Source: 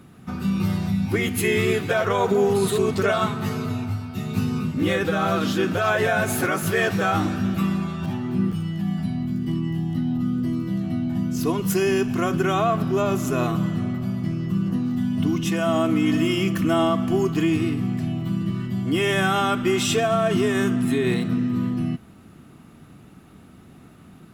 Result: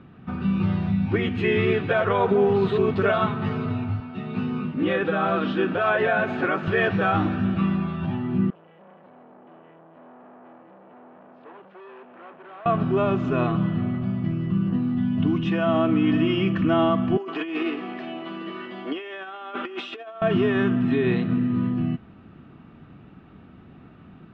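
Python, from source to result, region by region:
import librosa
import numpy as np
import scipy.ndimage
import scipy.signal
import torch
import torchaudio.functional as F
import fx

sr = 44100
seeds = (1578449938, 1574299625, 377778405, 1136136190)

y = fx.chain(x, sr, fx.highpass(hz=190.0, slope=12),
    fx.high_shelf(hz=7800.0, db=-10.0), at=(4.0, 6.68))
y = fx.chain(y, sr, fx.tube_stage(drive_db=33.0, bias=0.75),
    fx.highpass(hz=610.0, slope=12),
    fx.spacing_loss(db_at_10k=42), at=(8.5, 12.66))
y = fx.chain(y, sr, fx.highpass(hz=370.0, slope=24),
    fx.over_compress(threshold_db=-29.0, ratio=-0.5), at=(17.17, 20.22))
y = scipy.signal.sosfilt(scipy.signal.butter(4, 3100.0, 'lowpass', fs=sr, output='sos'), y)
y = fx.notch(y, sr, hz=2100.0, q=14.0)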